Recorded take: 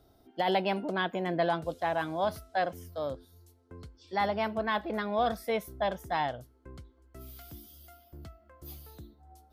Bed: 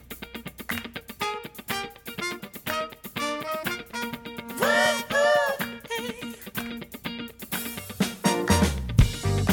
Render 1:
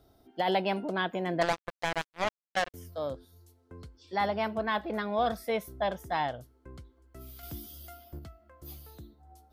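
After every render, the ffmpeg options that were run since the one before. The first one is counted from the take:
-filter_complex "[0:a]asettb=1/sr,asplit=3[a][b][c];[a]atrim=end=1.414[d];[b]atrim=start=1.41:end=2.74,asetpts=PTS-STARTPTS,afade=t=in:d=0.004:c=qsin,afade=t=out:st=1.326:d=0.004:c=qsin,acrusher=bits=3:mix=0:aa=0.5[e];[c]atrim=start=2.736[f];[d][e]acrossfade=d=0.004:c1=hsin:c2=qsin[g];[g][f]acrossfade=d=0.004:c1=qsin:c2=hsin,asplit=3[h][i][j];[h]atrim=end=7.432[k];[i]atrim=start=7.428:end=8.192,asetpts=PTS-STARTPTS,volume=6dB[l];[j]atrim=start=8.188[m];[k][l]acrossfade=d=0.004:c1=hsin:c2=hsin[n];[n][m]acrossfade=d=0.004:c1=hsin:c2=hsin"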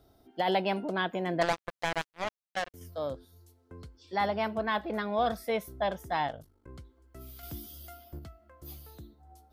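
-filter_complex "[0:a]asettb=1/sr,asplit=3[a][b][c];[a]atrim=end=6.274[d];[b]atrim=start=6.27:end=6.69,asetpts=PTS-STARTPTS,afade=t=in:d=0.004:c=qsin,afade=t=out:st=0.416:d=0.004:c=qsin,aeval=exprs='val(0)*sin(2*PI*25*n/s)':c=same[e];[c]atrim=start=6.686[f];[d][e]acrossfade=d=0.004:c1=hsin:c2=qsin[g];[g][f]acrossfade=d=0.004:c1=qsin:c2=hsin,asplit=3[h][i][j];[h]atrim=end=2.112[k];[i]atrim=start=2.108:end=2.812,asetpts=PTS-STARTPTS,volume=-4dB[l];[j]atrim=start=2.808[m];[k][l]acrossfade=d=0.004:c1=hsin:c2=hsin[n];[n][m]acrossfade=d=0.004:c1=hsin:c2=hsin"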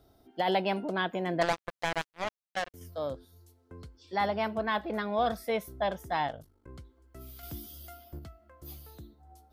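-af anull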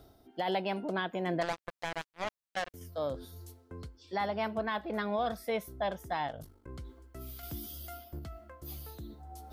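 -af "areverse,acompressor=mode=upward:threshold=-38dB:ratio=2.5,areverse,alimiter=limit=-23dB:level=0:latency=1:release=341"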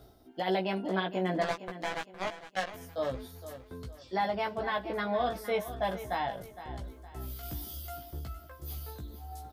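-filter_complex "[0:a]asplit=2[a][b];[b]adelay=16,volume=-3dB[c];[a][c]amix=inputs=2:normalize=0,aecho=1:1:462|924|1386|1848:0.224|0.0828|0.0306|0.0113"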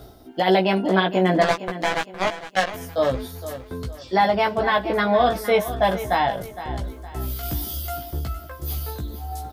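-af "volume=12dB"

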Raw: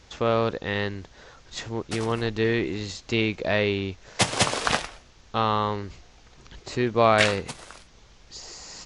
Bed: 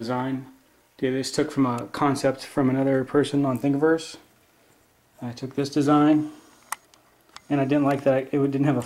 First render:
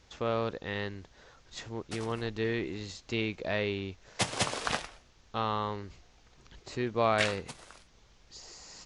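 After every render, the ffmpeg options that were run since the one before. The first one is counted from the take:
-af "volume=-8dB"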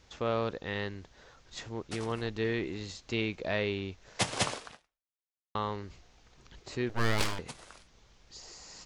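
-filter_complex "[0:a]asettb=1/sr,asplit=3[a][b][c];[a]atrim=end=6.894[d];[b]atrim=start=6.89:end=7.39,asetpts=PTS-STARTPTS,afade=t=in:d=0.004:c=qsin,afade=t=out:st=0.496:d=0.004:c=qsin,aeval=exprs='abs(val(0))':c=same[e];[c]atrim=start=7.386[f];[d][e]acrossfade=d=0.004:c1=hsin:c2=qsin[g];[g][f]acrossfade=d=0.004:c1=qsin:c2=hsin,asplit=2[h][i];[h]atrim=end=5.55,asetpts=PTS-STARTPTS,afade=t=out:st=4.51:d=1.04:c=exp[j];[i]atrim=start=5.55,asetpts=PTS-STARTPTS,afade=t=in:d=0.004:c=hsin[k];[j][k]concat=n=2:v=0:a=1"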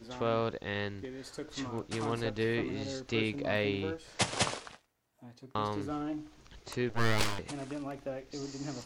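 -filter_complex "[1:a]volume=-18.5dB[a];[0:a][a]amix=inputs=2:normalize=0"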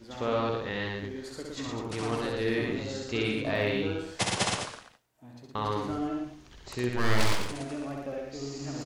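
-af "aecho=1:1:65|115|205:0.708|0.668|0.376"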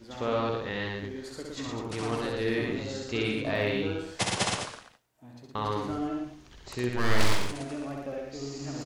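-filter_complex "[0:a]asettb=1/sr,asplit=3[a][b][c];[a]atrim=end=7.074[d];[b]atrim=start=7.07:end=7.51,asetpts=PTS-STARTPTS,afade=t=in:d=0.004:c=qsin,afade=t=out:st=0.436:d=0.004:c=qsin,asplit=2[e][f];[f]adelay=40,volume=-6.5dB[g];[e][g]amix=inputs=2:normalize=0,atrim=end_sample=19404[h];[c]atrim=start=7.506[i];[d][h]acrossfade=d=0.004:c1=hsin:c2=qsin[j];[j][i]acrossfade=d=0.004:c1=qsin:c2=hsin"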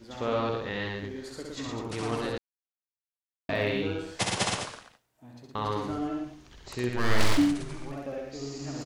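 -filter_complex "[0:a]asplit=3[a][b][c];[a]afade=t=out:st=7.37:d=0.02[d];[b]afreqshift=-290,afade=t=in:st=7.37:d=0.02,afade=t=out:st=7.91:d=0.02[e];[c]afade=t=in:st=7.91:d=0.02[f];[d][e][f]amix=inputs=3:normalize=0,asplit=3[g][h][i];[g]atrim=end=2.38,asetpts=PTS-STARTPTS,afade=t=out:st=2.376:d=0.004:c=hsin[j];[h]atrim=start=2.38:end=3.49,asetpts=PTS-STARTPTS,volume=0[k];[i]atrim=start=3.49,asetpts=PTS-STARTPTS,afade=t=in:d=0.004:c=hsin[l];[j][k][l]concat=n=3:v=0:a=1"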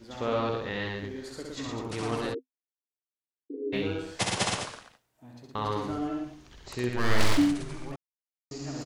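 -filter_complex "[0:a]asplit=3[a][b][c];[a]afade=t=out:st=2.33:d=0.02[d];[b]asuperpass=centerf=350:order=20:qfactor=1.6,afade=t=in:st=2.33:d=0.02,afade=t=out:st=3.72:d=0.02[e];[c]afade=t=in:st=3.72:d=0.02[f];[d][e][f]amix=inputs=3:normalize=0,asplit=3[g][h][i];[g]atrim=end=7.96,asetpts=PTS-STARTPTS,afade=t=out:st=7.956:d=0.004:c=hsin[j];[h]atrim=start=7.96:end=8.51,asetpts=PTS-STARTPTS,volume=0[k];[i]atrim=start=8.51,asetpts=PTS-STARTPTS,afade=t=in:d=0.004:c=hsin[l];[j][k][l]concat=n=3:v=0:a=1"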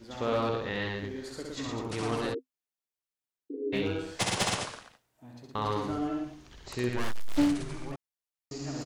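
-af "aeval=exprs='clip(val(0),-1,0.0708)':c=same"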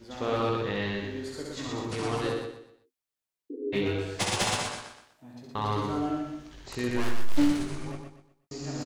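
-filter_complex "[0:a]asplit=2[a][b];[b]adelay=20,volume=-7dB[c];[a][c]amix=inputs=2:normalize=0,aecho=1:1:123|246|369|492:0.501|0.165|0.0546|0.018"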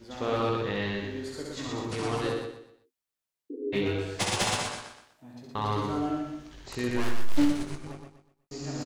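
-filter_complex "[0:a]asettb=1/sr,asplit=3[a][b][c];[a]atrim=end=7.454[d];[b]atrim=start=7.45:end=8.53,asetpts=PTS-STARTPTS,afade=t=in:d=0.004:c=qsin,afade=t=out:st=1.076:d=0.004:c=qsin,aeval=exprs='if(lt(val(0),0),0.447*val(0),val(0))':c=same[e];[c]atrim=start=8.526[f];[d][e]acrossfade=d=0.004:c1=hsin:c2=qsin[g];[g][f]acrossfade=d=0.004:c1=qsin:c2=hsin"

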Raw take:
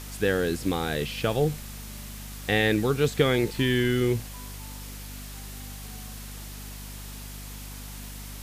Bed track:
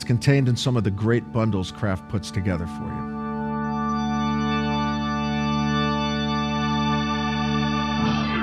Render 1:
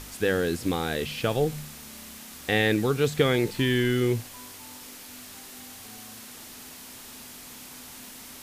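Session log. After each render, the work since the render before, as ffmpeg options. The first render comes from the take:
-af "bandreject=f=50:t=h:w=4,bandreject=f=100:t=h:w=4,bandreject=f=150:t=h:w=4,bandreject=f=200:t=h:w=4"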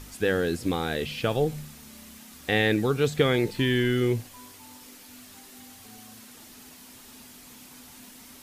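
-af "afftdn=nr=6:nf=-45"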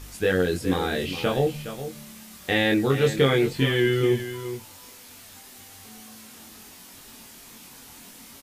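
-filter_complex "[0:a]asplit=2[a][b];[b]adelay=22,volume=-2dB[c];[a][c]amix=inputs=2:normalize=0,aecho=1:1:415:0.266"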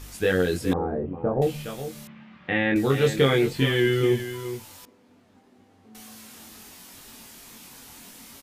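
-filter_complex "[0:a]asettb=1/sr,asplit=3[a][b][c];[a]atrim=end=0.734[d];[b]atrim=start=0.73:end=1.42,asetpts=PTS-STARTPTS,afade=t=in:d=0.004:c=qsin,afade=t=out:st=0.686:d=0.004:c=qsin,lowpass=f=1k:w=0.5412,lowpass=f=1k:w=1.3066[e];[c]atrim=start=1.416[f];[d][e]acrossfade=d=0.004:c1=hsin:c2=qsin[g];[g][f]acrossfade=d=0.004:c1=qsin:c2=hsin,asettb=1/sr,asplit=3[h][i][j];[h]atrim=end=2.074[k];[i]atrim=start=2.07:end=2.76,asetpts=PTS-STARTPTS,afade=t=in:d=0.004:c=qsin,afade=t=out:st=0.686:d=0.004:c=qsin,highpass=110,equalizer=f=150:t=q:w=4:g=8,equalizer=f=420:t=q:w=4:g=-8,equalizer=f=660:t=q:w=4:g=-4,lowpass=f=2.6k:w=0.5412,lowpass=f=2.6k:w=1.3066[l];[j]atrim=start=2.756[m];[k][l]acrossfade=d=0.004:c1=hsin:c2=qsin[n];[n][m]acrossfade=d=0.004:c1=qsin:c2=hsin,asettb=1/sr,asplit=3[o][p][q];[o]atrim=end=4.854[r];[p]atrim=start=4.85:end=5.95,asetpts=PTS-STARTPTS,afade=t=in:d=0.004:c=qsin,afade=t=out:st=1.096:d=0.004:c=qsin,bandpass=f=280:t=q:w=0.85[s];[q]atrim=start=5.946[t];[r][s]acrossfade=d=0.004:c1=hsin:c2=qsin[u];[u][t]acrossfade=d=0.004:c1=qsin:c2=hsin"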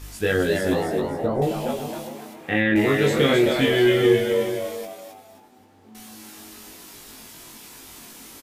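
-filter_complex "[0:a]asplit=2[a][b];[b]adelay=19,volume=-3.5dB[c];[a][c]amix=inputs=2:normalize=0,asplit=6[d][e][f][g][h][i];[e]adelay=264,afreqshift=99,volume=-5dB[j];[f]adelay=528,afreqshift=198,volume=-13.6dB[k];[g]adelay=792,afreqshift=297,volume=-22.3dB[l];[h]adelay=1056,afreqshift=396,volume=-30.9dB[m];[i]adelay=1320,afreqshift=495,volume=-39.5dB[n];[d][j][k][l][m][n]amix=inputs=6:normalize=0"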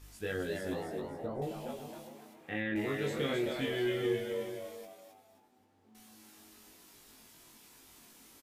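-af "volume=-15dB"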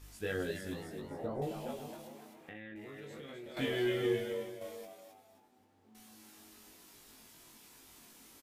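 -filter_complex "[0:a]asettb=1/sr,asplit=3[a][b][c];[a]atrim=end=0.514[d];[b]atrim=start=0.51:end=1.11,asetpts=PTS-STARTPTS,afade=t=in:d=0.004:c=qsin,afade=t=out:st=0.596:d=0.004:c=qsin,equalizer=f=690:w=0.8:g=-11.5[e];[c]atrim=start=1.106[f];[d][e]acrossfade=d=0.004:c1=hsin:c2=qsin[g];[g][f]acrossfade=d=0.004:c1=qsin:c2=hsin,asettb=1/sr,asplit=3[h][i][j];[h]atrim=end=1.944[k];[i]atrim=start=1.94:end=3.57,asetpts=PTS-STARTPTS,afade=t=in:d=0.004:c=qsin,afade=t=out:st=1.626:d=0.004:c=qsin,acompressor=threshold=-44dB:ratio=12:attack=3.2:release=140:knee=1:detection=peak[l];[j]atrim=start=3.566[m];[k][l]acrossfade=d=0.004:c1=hsin:c2=qsin[n];[n][m]acrossfade=d=0.004:c1=qsin:c2=hsin,asplit=2[o][p];[o]atrim=end=4.61,asetpts=PTS-STARTPTS,afade=t=out:st=4.21:d=0.4:silence=0.473151[q];[p]atrim=start=4.61,asetpts=PTS-STARTPTS,afade=t=in:d=0.004:c=hsin:silence=0.473151[r];[q][r]concat=n=2:v=0:a=1"

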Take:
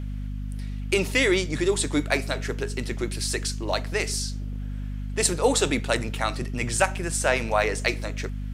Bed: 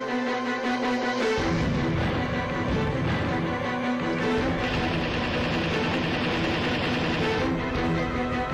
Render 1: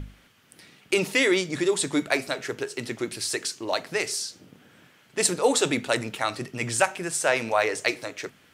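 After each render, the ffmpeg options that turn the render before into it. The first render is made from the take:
-af "bandreject=f=50:t=h:w=6,bandreject=f=100:t=h:w=6,bandreject=f=150:t=h:w=6,bandreject=f=200:t=h:w=6,bandreject=f=250:t=h:w=6"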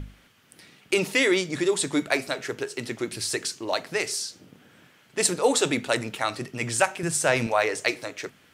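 -filter_complex "[0:a]asettb=1/sr,asplit=3[a][b][c];[a]atrim=end=3.134[d];[b]atrim=start=3.13:end=3.58,asetpts=PTS-STARTPTS,afade=t=in:d=0.004:c=qsin,afade=t=out:st=0.446:d=0.004:c=qsin,lowshelf=f=160:g=8.5[e];[c]atrim=start=3.576[f];[d][e]acrossfade=d=0.004:c1=hsin:c2=qsin[g];[g][f]acrossfade=d=0.004:c1=qsin:c2=hsin,asettb=1/sr,asplit=3[h][i][j];[h]atrim=end=7.034[k];[i]atrim=start=7.03:end=7.47,asetpts=PTS-STARTPTS,afade=t=in:d=0.004:c=qsin,afade=t=out:st=0.436:d=0.004:c=qsin,bass=f=250:g=12,treble=f=4k:g=2[l];[j]atrim=start=7.466[m];[k][l]acrossfade=d=0.004:c1=hsin:c2=qsin[n];[n][m]acrossfade=d=0.004:c1=qsin:c2=hsin"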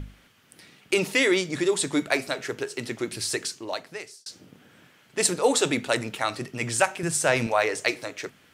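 -filter_complex "[0:a]asplit=2[a][b];[a]atrim=end=4.26,asetpts=PTS-STARTPTS,afade=t=out:st=3.35:d=0.91[c];[b]atrim=start=4.26,asetpts=PTS-STARTPTS,afade=t=in:d=0.004:c=hsin[d];[c][d]concat=n=2:v=0:a=1"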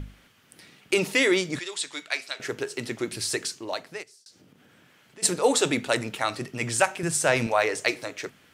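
-filter_complex "[0:a]asettb=1/sr,asplit=3[a][b][c];[a]atrim=end=1.594[d];[b]atrim=start=1.59:end=2.4,asetpts=PTS-STARTPTS,afade=t=in:d=0.004:c=qsin,afade=t=out:st=0.806:d=0.004:c=qsin,bandpass=f=3.7k:t=q:w=0.74[e];[c]atrim=start=2.396[f];[d][e]acrossfade=d=0.004:c1=hsin:c2=qsin[g];[g][f]acrossfade=d=0.004:c1=qsin:c2=hsin,asplit=3[h][i][j];[h]afade=t=out:st=4.02:d=0.02[k];[i]acompressor=threshold=-54dB:ratio=2.5:attack=3.2:release=140:knee=1:detection=peak,afade=t=in:st=4.02:d=0.02,afade=t=out:st=5.22:d=0.02[l];[j]afade=t=in:st=5.22:d=0.02[m];[k][l][m]amix=inputs=3:normalize=0"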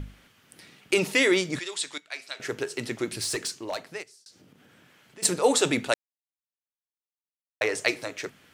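-filter_complex "[0:a]asettb=1/sr,asplit=3[a][b][c];[a]atrim=end=3.084[d];[b]atrim=start=3.08:end=5.25,asetpts=PTS-STARTPTS,afade=t=in:d=0.004:c=qsin,afade=t=out:st=2.166:d=0.004:c=qsin,asoftclip=type=hard:threshold=-24.5dB[e];[c]atrim=start=5.246[f];[d][e]acrossfade=d=0.004:c1=hsin:c2=qsin[g];[g][f]acrossfade=d=0.004:c1=qsin:c2=hsin,asplit=4[h][i][j][k];[h]atrim=end=1.98,asetpts=PTS-STARTPTS,afade=t=out:st=1.976:d=0.004:c=hsin:silence=0.149624[l];[i]atrim=start=1.98:end=5.94,asetpts=PTS-STARTPTS,afade=t=in:d=0.54:silence=0.149624,afade=t=out:st=3.956:d=0.004:c=hsin[m];[j]atrim=start=5.94:end=7.61,asetpts=PTS-STARTPTS,volume=0[n];[k]atrim=start=7.61,asetpts=PTS-STARTPTS,afade=t=in:d=0.004:c=hsin[o];[l][m][n][o]concat=n=4:v=0:a=1"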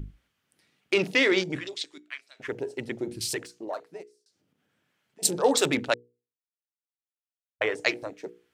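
-af "afwtdn=0.02,bandreject=f=60:t=h:w=6,bandreject=f=120:t=h:w=6,bandreject=f=180:t=h:w=6,bandreject=f=240:t=h:w=6,bandreject=f=300:t=h:w=6,bandreject=f=360:t=h:w=6,bandreject=f=420:t=h:w=6,bandreject=f=480:t=h:w=6"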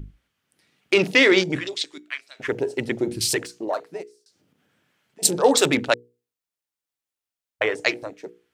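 -af "dynaudnorm=f=210:g=7:m=8dB"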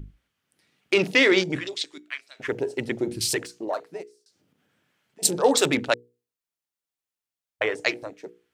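-af "volume=-2.5dB"

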